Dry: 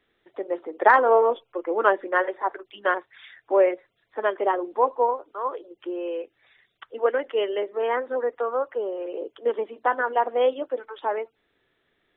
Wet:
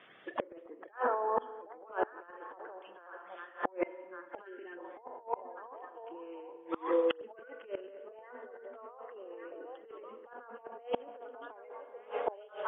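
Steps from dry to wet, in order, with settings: coarse spectral quantiser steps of 30 dB; treble shelf 2.6 kHz -7 dB; speed mistake 25 fps video run at 24 fps; Chebyshev band-pass 130–3200 Hz, order 3; bass shelf 400 Hz -10 dB; on a send: repeats whose band climbs or falls 383 ms, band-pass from 210 Hz, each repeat 1.4 oct, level -4 dB; on the sum: spring tank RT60 1.7 s, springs 35/39 ms, chirp 55 ms, DRR 11 dB; time-frequency box 4.45–4.78 s, 440–1300 Hz -19 dB; compressor with a negative ratio -35 dBFS, ratio -1; inverted gate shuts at -30 dBFS, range -27 dB; trim +12 dB

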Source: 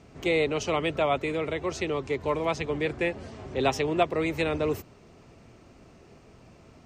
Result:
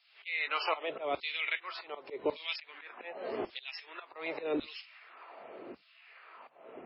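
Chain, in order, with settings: level-controlled noise filter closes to 2.3 kHz, open at -21 dBFS; in parallel at 0 dB: compression 5:1, threshold -37 dBFS, peak gain reduction 17.5 dB; on the sum: peak limiter -18.5 dBFS, peak gain reduction 8 dB; LFO high-pass saw down 0.87 Hz 320–4700 Hz; slow attack 310 ms; MP3 16 kbps 12 kHz

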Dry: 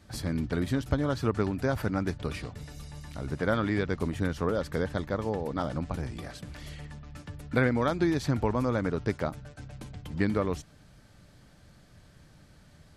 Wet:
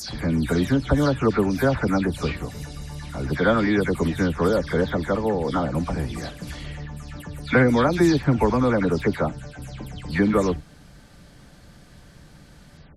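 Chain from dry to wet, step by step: delay that grows with frequency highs early, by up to 192 ms; trim +8.5 dB

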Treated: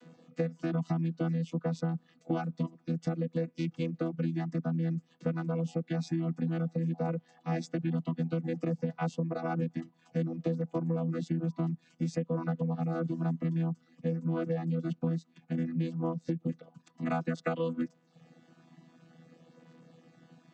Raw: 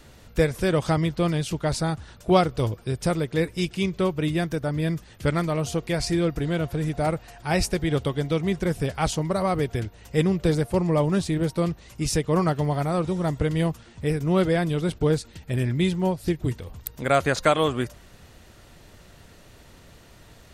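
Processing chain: vocoder on a held chord bare fifth, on E3; reverb removal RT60 0.64 s; compression 6:1, threshold -28 dBFS, peak gain reduction 11.5 dB

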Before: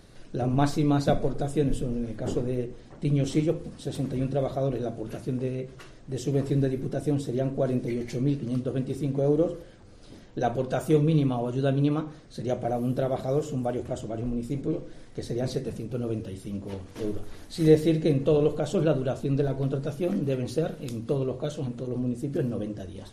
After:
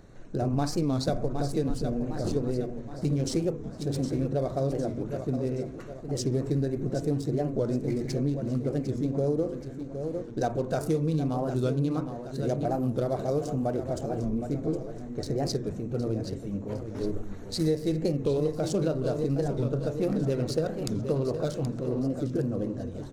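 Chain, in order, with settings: local Wiener filter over 9 samples; resonant high shelf 3.9 kHz +6 dB, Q 3; feedback delay 764 ms, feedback 47%, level -11 dB; compression 6:1, threshold -24 dBFS, peak gain reduction 11.5 dB; 20.00–22.30 s: peaking EQ 1.5 kHz +3 dB 2.6 oct; warped record 45 rpm, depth 160 cents; trim +1 dB

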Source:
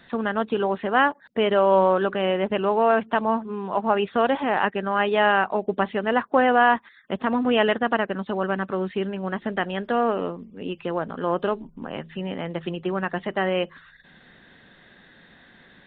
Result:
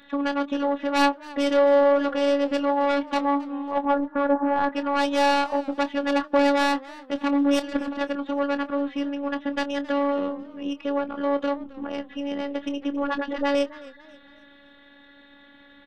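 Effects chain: tracing distortion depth 0.16 ms; 3.85–4.70 s: steep low-pass 1.7 kHz 96 dB/octave; 7.59–8.01 s: compressor with a negative ratio -27 dBFS, ratio -0.5; 12.90–13.55 s: phase dispersion highs, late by 83 ms, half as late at 410 Hz; saturation -13.5 dBFS, distortion -12 dB; robot voice 283 Hz; doubling 25 ms -12 dB; modulated delay 270 ms, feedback 39%, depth 116 cents, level -20.5 dB; trim +2.5 dB

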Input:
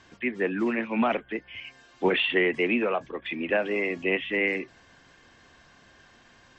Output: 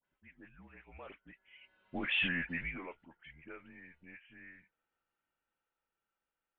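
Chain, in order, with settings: Doppler pass-by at 2.20 s, 16 m/s, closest 1.1 m; peak limiter -27.5 dBFS, peak gain reduction 11.5 dB; treble shelf 2.5 kHz +9 dB; mistuned SSB -170 Hz 160–3500 Hz; peaking EQ 100 Hz -8 dB 1.6 oct; phase dispersion highs, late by 56 ms, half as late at 1.5 kHz; tape noise reduction on one side only decoder only

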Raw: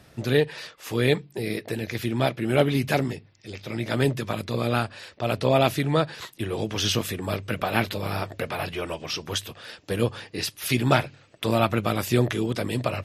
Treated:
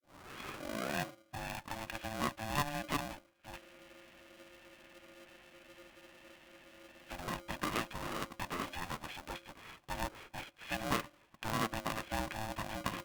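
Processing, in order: tape start-up on the opening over 1.61 s; high-pass 87 Hz; compression 1.5:1, threshold -33 dBFS, peak gain reduction 7 dB; rippled Chebyshev low-pass 3 kHz, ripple 9 dB; spectral freeze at 3.61 s, 3.48 s; polarity switched at an audio rate 440 Hz; trim -3 dB

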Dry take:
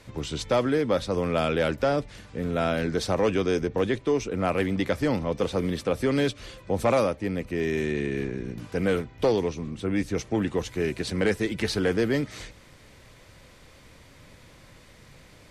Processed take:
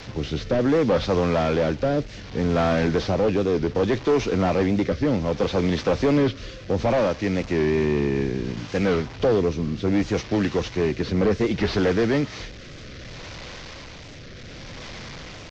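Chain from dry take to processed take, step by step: one-bit delta coder 32 kbps, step -39 dBFS; rotary cabinet horn 0.65 Hz; saturation -22 dBFS, distortion -15 dB; warped record 45 rpm, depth 100 cents; trim +8.5 dB

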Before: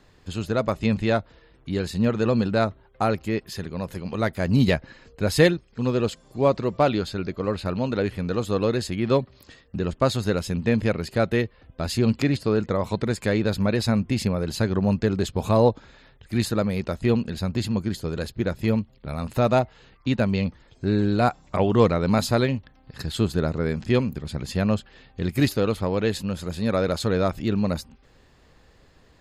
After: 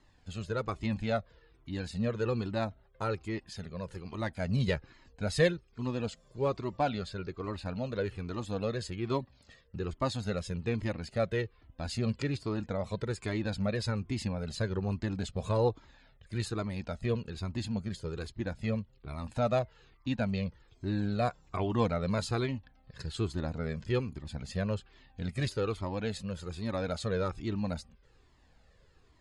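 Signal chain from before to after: resampled via 22.05 kHz; Shepard-style flanger falling 1.2 Hz; trim -5 dB

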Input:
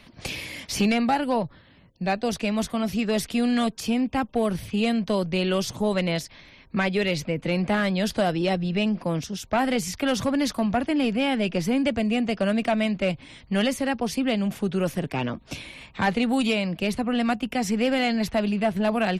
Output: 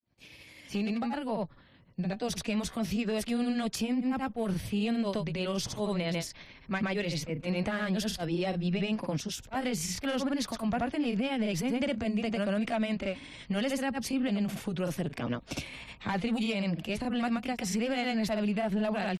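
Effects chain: fade-in on the opening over 2.63 s; peak limiter -22.5 dBFS, peak gain reduction 8.5 dB; granulator 167 ms, grains 12 per s, spray 73 ms, pitch spread up and down by 0 st

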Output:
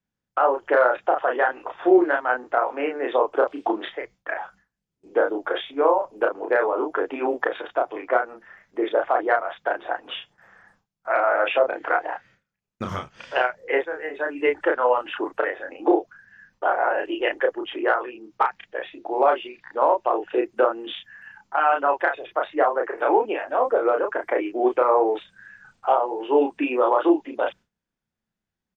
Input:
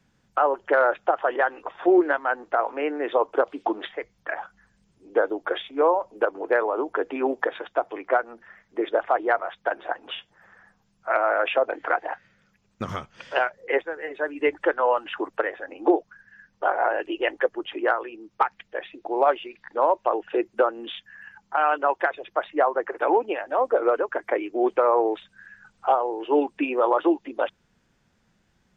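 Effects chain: gate with hold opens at -48 dBFS; doubling 32 ms -3.5 dB

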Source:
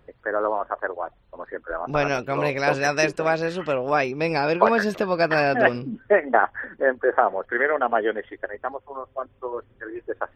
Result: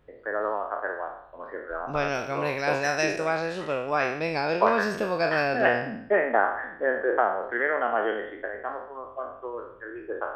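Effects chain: spectral sustain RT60 0.68 s; trim -6 dB

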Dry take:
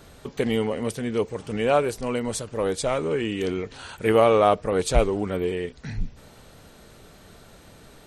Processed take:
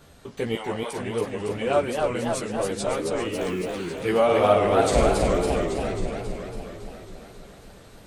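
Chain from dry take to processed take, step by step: 0.55–0.98 s: resonant high-pass 780 Hz, resonance Q 1.8; 3.32–3.72 s: word length cut 8-bit, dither none; 4.24–5.23 s: flutter echo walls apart 8.6 m, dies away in 0.84 s; chorus voices 2, 0.66 Hz, delay 14 ms, depth 4 ms; modulated delay 274 ms, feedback 66%, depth 191 cents, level -3.5 dB

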